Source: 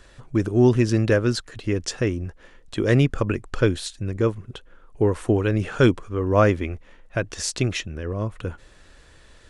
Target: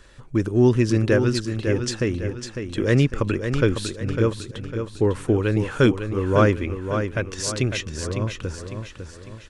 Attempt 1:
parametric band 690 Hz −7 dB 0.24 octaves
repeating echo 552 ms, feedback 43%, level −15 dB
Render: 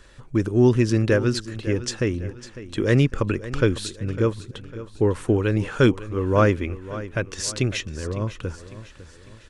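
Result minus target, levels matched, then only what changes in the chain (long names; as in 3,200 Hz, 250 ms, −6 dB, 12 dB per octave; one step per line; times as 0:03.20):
echo-to-direct −7.5 dB
change: repeating echo 552 ms, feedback 43%, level −7.5 dB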